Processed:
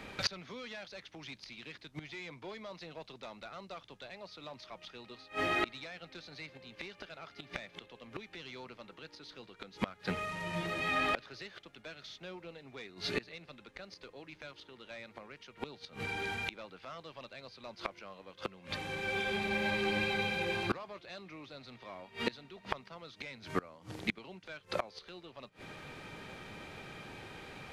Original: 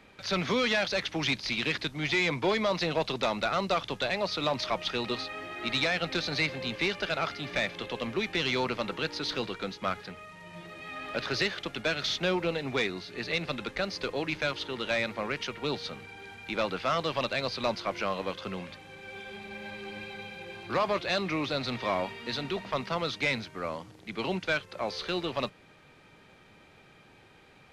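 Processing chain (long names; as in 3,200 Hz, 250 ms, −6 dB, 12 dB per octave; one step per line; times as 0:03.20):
gate with flip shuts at −27 dBFS, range −27 dB
level +8.5 dB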